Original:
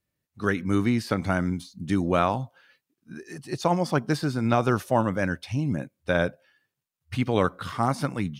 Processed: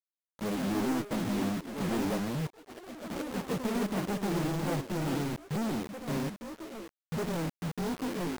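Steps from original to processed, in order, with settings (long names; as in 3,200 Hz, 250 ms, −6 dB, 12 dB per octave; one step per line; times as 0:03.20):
pitch glide at a constant tempo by +10 semitones starting unshifted
elliptic low-pass filter 550 Hz, stop band 50 dB
asymmetric clip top −30.5 dBFS
low shelf with overshoot 110 Hz −9 dB, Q 3
log-companded quantiser 2 bits
delay with pitch and tempo change per echo 238 ms, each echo +4 semitones, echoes 3, each echo −6 dB
expander for the loud parts 1.5 to 1, over −42 dBFS
level −4.5 dB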